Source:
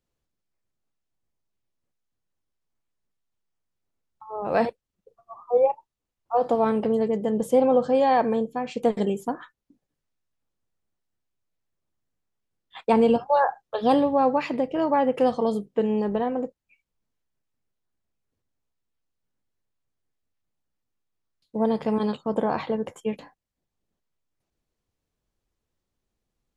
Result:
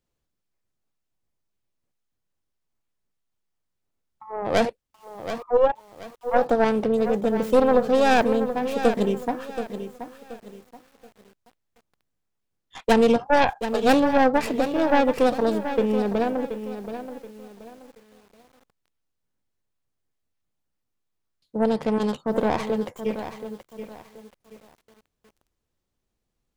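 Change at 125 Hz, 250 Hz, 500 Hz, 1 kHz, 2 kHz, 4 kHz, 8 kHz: +2.0 dB, +2.0 dB, +1.5 dB, +1.0 dB, +8.0 dB, +7.0 dB, can't be measured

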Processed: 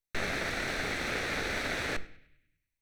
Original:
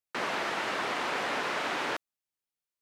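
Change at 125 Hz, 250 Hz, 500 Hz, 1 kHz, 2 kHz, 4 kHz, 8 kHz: +9.5, +1.0, −2.0, −7.5, 0.0, −1.0, +2.5 decibels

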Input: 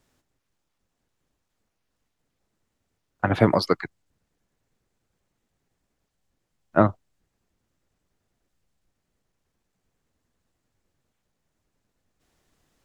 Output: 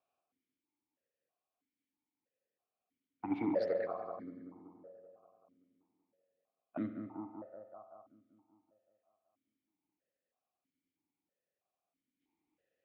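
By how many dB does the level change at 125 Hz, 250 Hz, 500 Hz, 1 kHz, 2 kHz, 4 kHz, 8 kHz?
−25.5 dB, −12.0 dB, −12.5 dB, −17.5 dB, −20.5 dB, below −25 dB, can't be measured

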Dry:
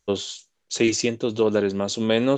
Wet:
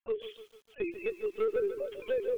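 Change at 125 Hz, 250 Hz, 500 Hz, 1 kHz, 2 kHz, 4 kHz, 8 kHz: below −25 dB, −21.0 dB, −8.0 dB, −15.5 dB, −14.0 dB, below −20 dB, below −35 dB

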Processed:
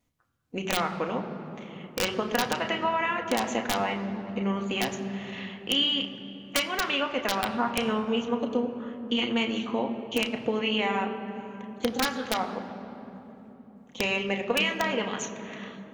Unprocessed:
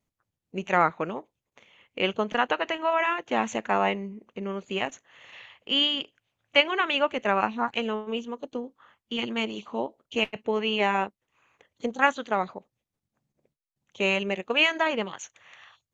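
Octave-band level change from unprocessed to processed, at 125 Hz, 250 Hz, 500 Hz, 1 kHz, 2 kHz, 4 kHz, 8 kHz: +3.0 dB, +3.0 dB, −1.5 dB, −3.0 dB, −3.0 dB, 0.0 dB, can't be measured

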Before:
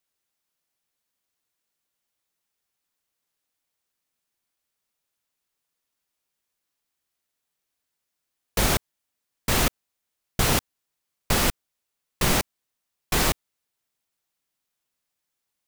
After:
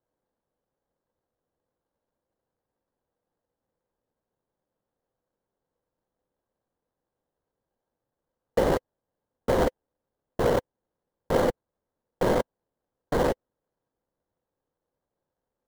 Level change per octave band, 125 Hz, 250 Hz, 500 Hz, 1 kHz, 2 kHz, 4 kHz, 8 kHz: −5.0, 0.0, +7.0, −1.0, −8.0, −14.0, −18.0 decibels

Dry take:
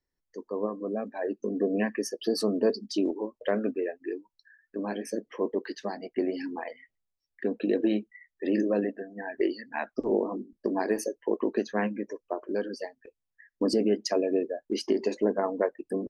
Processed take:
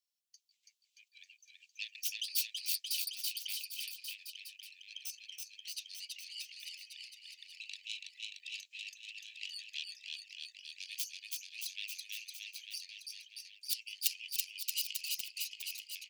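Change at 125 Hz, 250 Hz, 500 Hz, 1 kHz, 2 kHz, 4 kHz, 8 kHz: can't be measured, below −40 dB, below −40 dB, below −40 dB, −6.5 dB, +4.0 dB, +4.0 dB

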